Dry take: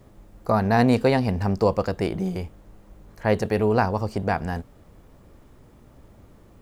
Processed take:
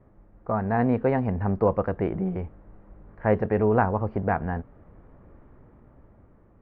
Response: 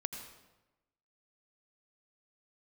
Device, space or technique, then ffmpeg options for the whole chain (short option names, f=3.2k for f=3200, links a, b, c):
action camera in a waterproof case: -af "lowpass=f=1.9k:w=0.5412,lowpass=f=1.9k:w=1.3066,dynaudnorm=f=260:g=9:m=6.5dB,volume=-5.5dB" -ar 48000 -c:a aac -b:a 64k